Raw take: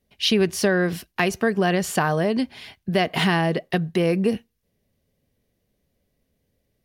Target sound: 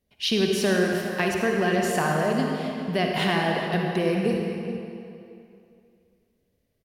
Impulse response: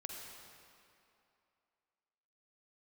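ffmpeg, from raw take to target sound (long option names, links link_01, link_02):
-filter_complex "[0:a]asplit=2[link_01][link_02];[link_02]adelay=414,volume=-12dB,highshelf=frequency=4000:gain=-9.32[link_03];[link_01][link_03]amix=inputs=2:normalize=0[link_04];[1:a]atrim=start_sample=2205[link_05];[link_04][link_05]afir=irnorm=-1:irlink=0"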